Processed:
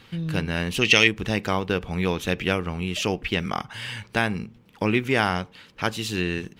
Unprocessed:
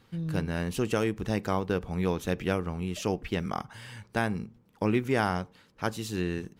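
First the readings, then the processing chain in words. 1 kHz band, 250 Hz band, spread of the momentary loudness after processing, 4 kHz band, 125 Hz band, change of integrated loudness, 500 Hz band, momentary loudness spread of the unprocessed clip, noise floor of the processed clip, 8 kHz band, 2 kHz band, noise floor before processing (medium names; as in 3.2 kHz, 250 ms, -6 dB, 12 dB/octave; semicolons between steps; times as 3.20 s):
+4.5 dB, +3.5 dB, 12 LU, +15.0 dB, +3.5 dB, +6.5 dB, +3.5 dB, 8 LU, -53 dBFS, +8.0 dB, +12.0 dB, -62 dBFS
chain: in parallel at -1 dB: compression, threshold -42 dBFS, peak gain reduction 19.5 dB; on the sum: time-frequency box 0.82–1.07 s, 1.8–6.6 kHz +12 dB; peaking EQ 2.8 kHz +9.5 dB 1.4 oct; trim +2 dB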